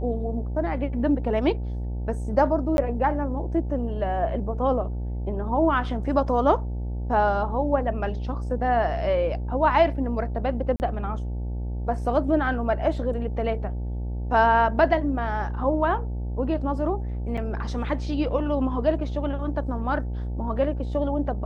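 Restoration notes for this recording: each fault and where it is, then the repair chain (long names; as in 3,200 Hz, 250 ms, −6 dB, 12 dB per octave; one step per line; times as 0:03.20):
mains buzz 60 Hz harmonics 15 −29 dBFS
0:02.77–0:02.78: drop-out 11 ms
0:10.76–0:10.80: drop-out 39 ms
0:17.37–0:17.38: drop-out 5.5 ms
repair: hum removal 60 Hz, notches 15
repair the gap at 0:02.77, 11 ms
repair the gap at 0:10.76, 39 ms
repair the gap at 0:17.37, 5.5 ms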